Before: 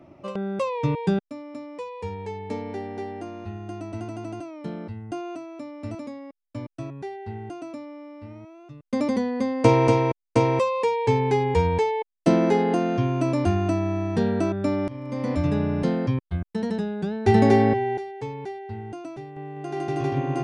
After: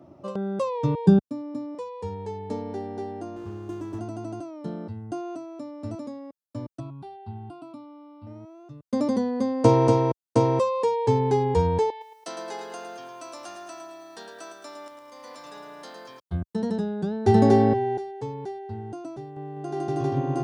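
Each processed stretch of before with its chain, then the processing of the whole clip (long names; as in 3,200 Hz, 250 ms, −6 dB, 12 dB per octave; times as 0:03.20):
0:01.06–0:01.75: low-shelf EQ 290 Hz +11 dB + notch comb filter 660 Hz
0:03.36–0:03.99: EQ curve with evenly spaced ripples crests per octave 0.71, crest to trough 10 dB + windowed peak hold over 17 samples
0:06.80–0:08.27: high-pass filter 43 Hz + phaser with its sweep stopped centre 1,800 Hz, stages 6
0:11.90–0:16.20: Bessel high-pass filter 1,700 Hz + feedback echo at a low word length 109 ms, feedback 55%, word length 10 bits, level −7 dB
whole clip: high-pass filter 63 Hz; parametric band 2,300 Hz −12.5 dB 0.78 octaves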